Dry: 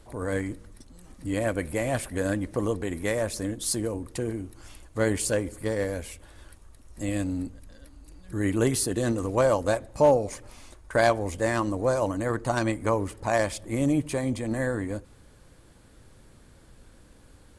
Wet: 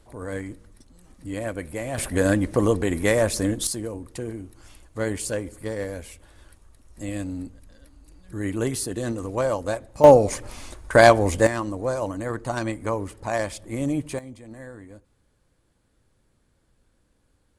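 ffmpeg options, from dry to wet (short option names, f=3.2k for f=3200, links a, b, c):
-af "asetnsamples=n=441:p=0,asendcmd='1.98 volume volume 7dB;3.67 volume volume -2dB;10.04 volume volume 8.5dB;11.47 volume volume -1.5dB;14.19 volume volume -13dB',volume=-3dB"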